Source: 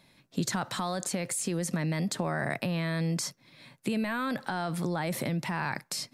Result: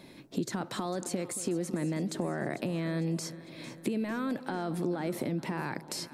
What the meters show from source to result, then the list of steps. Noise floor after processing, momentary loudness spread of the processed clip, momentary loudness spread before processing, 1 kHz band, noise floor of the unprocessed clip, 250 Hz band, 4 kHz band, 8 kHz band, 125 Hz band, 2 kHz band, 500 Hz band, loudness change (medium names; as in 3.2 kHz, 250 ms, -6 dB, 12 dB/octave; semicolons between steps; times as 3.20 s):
-51 dBFS, 5 LU, 3 LU, -4.5 dB, -66 dBFS, -0.5 dB, -5.5 dB, -5.5 dB, -4.0 dB, -6.5 dB, 0.0 dB, -2.5 dB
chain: peaking EQ 340 Hz +13 dB 1.3 oct; compression 2:1, threshold -47 dBFS, peak gain reduction 16 dB; on a send: echo whose repeats swap between lows and highs 225 ms, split 910 Hz, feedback 72%, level -13 dB; on the sum: trim +5.5 dB